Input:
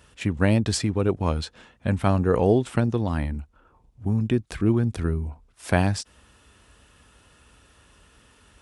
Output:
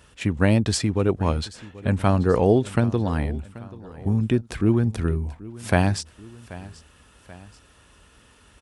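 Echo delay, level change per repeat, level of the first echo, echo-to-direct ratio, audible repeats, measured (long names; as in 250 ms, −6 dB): 783 ms, −5.5 dB, −19.0 dB, −18.0 dB, 2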